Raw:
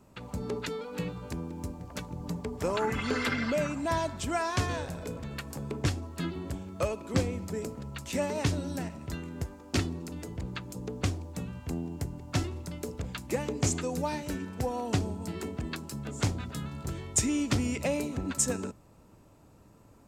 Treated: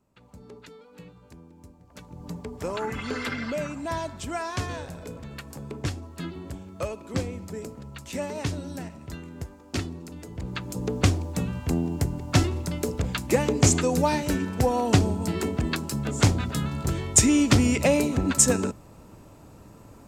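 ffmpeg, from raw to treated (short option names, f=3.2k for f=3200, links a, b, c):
-af "volume=9dB,afade=t=in:st=1.86:d=0.47:silence=0.281838,afade=t=in:st=10.28:d=0.61:silence=0.316228"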